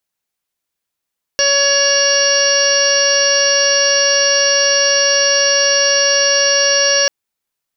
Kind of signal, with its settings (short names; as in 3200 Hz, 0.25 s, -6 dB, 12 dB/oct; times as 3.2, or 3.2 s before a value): steady additive tone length 5.69 s, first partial 562 Hz, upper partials -11/-2/-14/-3.5/-14.5/-18.5/-3/-8.5/2.5 dB, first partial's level -16.5 dB